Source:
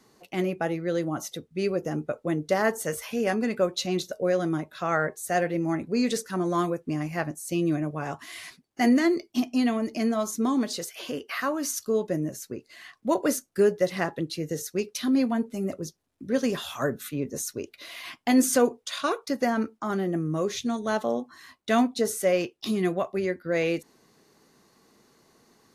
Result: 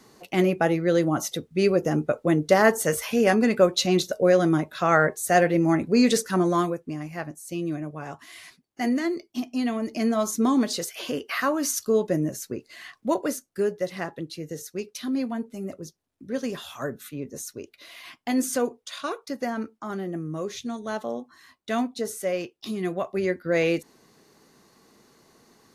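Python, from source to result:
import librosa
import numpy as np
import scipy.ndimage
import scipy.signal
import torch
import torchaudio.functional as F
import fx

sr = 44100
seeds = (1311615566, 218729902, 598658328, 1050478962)

y = fx.gain(x, sr, db=fx.line((6.38, 6.0), (6.96, -4.0), (9.44, -4.0), (10.27, 3.5), (12.93, 3.5), (13.35, -4.0), (22.76, -4.0), (23.31, 3.0)))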